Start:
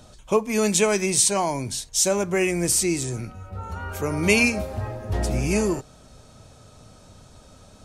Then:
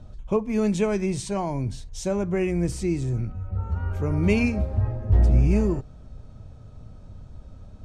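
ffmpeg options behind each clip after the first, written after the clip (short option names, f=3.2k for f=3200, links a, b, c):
-af "aemphasis=mode=reproduction:type=riaa,volume=-6.5dB"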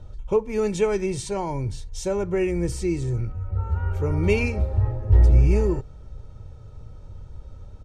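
-af "aecho=1:1:2.2:0.55"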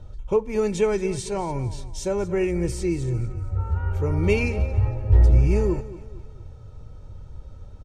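-af "aecho=1:1:228|456|684|912:0.158|0.0634|0.0254|0.0101"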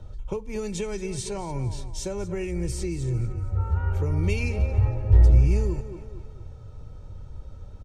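-filter_complex "[0:a]acrossover=split=150|3000[a][b][c];[b]acompressor=threshold=-30dB:ratio=6[d];[a][d][c]amix=inputs=3:normalize=0"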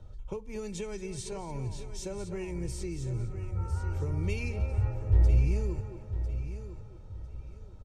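-filter_complex "[0:a]asplit=2[a][b];[b]aecho=0:1:1001|2002|3003:0.282|0.0733|0.0191[c];[a][c]amix=inputs=2:normalize=0,aresample=32000,aresample=44100,volume=-7dB"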